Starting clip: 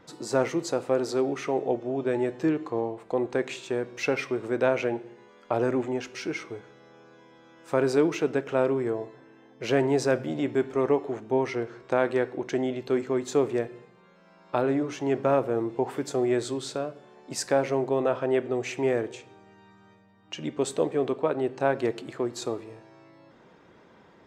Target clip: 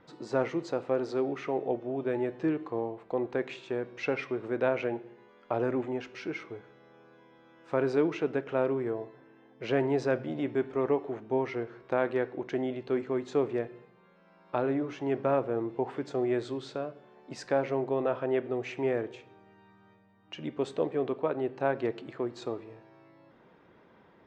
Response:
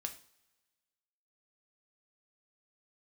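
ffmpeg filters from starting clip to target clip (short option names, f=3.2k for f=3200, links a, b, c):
-af "lowpass=3.5k,volume=-4dB"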